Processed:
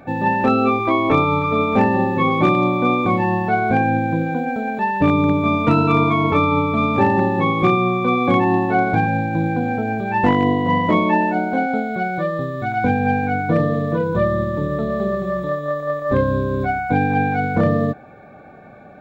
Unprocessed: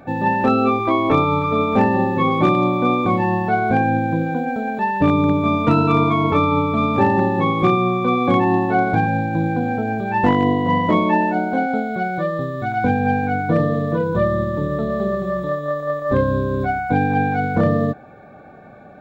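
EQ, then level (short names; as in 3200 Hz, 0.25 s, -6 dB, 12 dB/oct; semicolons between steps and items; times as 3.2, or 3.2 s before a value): bell 2300 Hz +3.5 dB 0.39 oct; 0.0 dB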